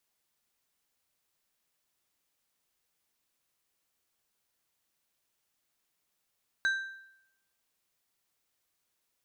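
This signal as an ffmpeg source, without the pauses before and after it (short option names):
-f lavfi -i "aevalsrc='0.0708*pow(10,-3*t/0.79)*sin(2*PI*1570*t)+0.0188*pow(10,-3*t/0.6)*sin(2*PI*3925*t)+0.00501*pow(10,-3*t/0.521)*sin(2*PI*6280*t)+0.00133*pow(10,-3*t/0.487)*sin(2*PI*7850*t)+0.000355*pow(10,-3*t/0.451)*sin(2*PI*10205*t)':d=1.55:s=44100"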